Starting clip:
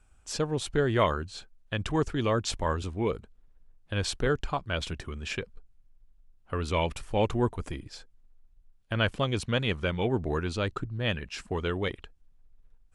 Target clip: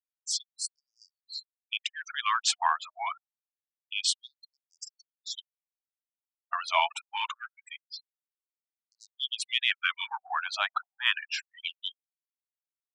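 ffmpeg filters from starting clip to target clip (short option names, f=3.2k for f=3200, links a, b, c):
-af "afftfilt=real='re*gte(hypot(re,im),0.0126)':imag='im*gte(hypot(re,im),0.0126)':win_size=1024:overlap=0.75,acontrast=79,afftfilt=real='re*gte(b*sr/1024,640*pow(4700/640,0.5+0.5*sin(2*PI*0.26*pts/sr)))':imag='im*gte(b*sr/1024,640*pow(4700/640,0.5+0.5*sin(2*PI*0.26*pts/sr)))':win_size=1024:overlap=0.75"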